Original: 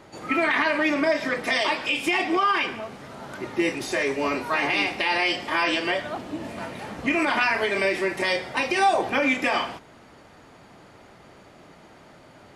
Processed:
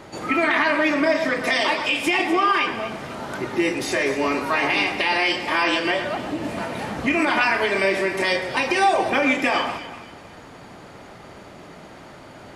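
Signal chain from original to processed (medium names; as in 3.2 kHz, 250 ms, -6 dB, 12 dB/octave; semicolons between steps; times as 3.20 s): in parallel at +1.5 dB: compression, threshold -33 dBFS, peak gain reduction 16 dB; on the sum: echo whose repeats swap between lows and highs 123 ms, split 1.8 kHz, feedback 58%, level -8 dB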